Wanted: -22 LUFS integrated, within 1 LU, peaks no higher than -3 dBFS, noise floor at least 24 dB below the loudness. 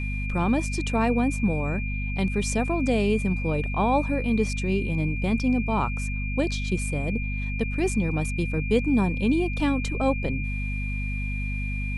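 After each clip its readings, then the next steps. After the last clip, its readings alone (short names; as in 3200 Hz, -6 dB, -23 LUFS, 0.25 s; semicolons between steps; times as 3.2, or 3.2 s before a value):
hum 50 Hz; harmonics up to 250 Hz; hum level -26 dBFS; steady tone 2400 Hz; tone level -34 dBFS; loudness -26.0 LUFS; peak -9.5 dBFS; loudness target -22.0 LUFS
-> de-hum 50 Hz, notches 5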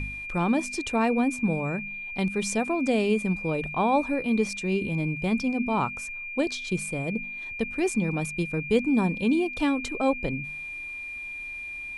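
hum none; steady tone 2400 Hz; tone level -34 dBFS
-> notch 2400 Hz, Q 30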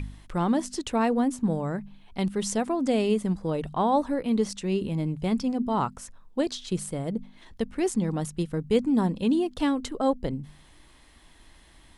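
steady tone none; loudness -27.5 LUFS; peak -10.5 dBFS; loudness target -22.0 LUFS
-> gain +5.5 dB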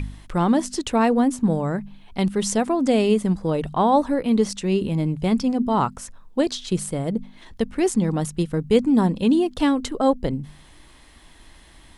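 loudness -22.0 LUFS; peak -5.0 dBFS; noise floor -49 dBFS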